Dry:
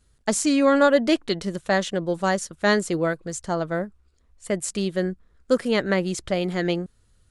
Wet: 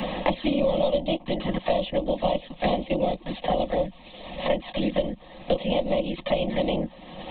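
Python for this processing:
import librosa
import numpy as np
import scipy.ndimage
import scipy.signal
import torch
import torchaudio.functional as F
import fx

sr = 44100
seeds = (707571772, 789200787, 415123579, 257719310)

y = fx.bin_compress(x, sr, power=0.6)
y = fx.env_flanger(y, sr, rest_ms=8.1, full_db=-16.5)
y = fx.lpc_vocoder(y, sr, seeds[0], excitation='whisper', order=16)
y = fx.low_shelf(y, sr, hz=180.0, db=-8.0)
y = fx.fixed_phaser(y, sr, hz=390.0, stages=6)
y = y + 0.39 * np.pad(y, (int(5.5 * sr / 1000.0), 0))[:len(y)]
y = fx.band_squash(y, sr, depth_pct=100)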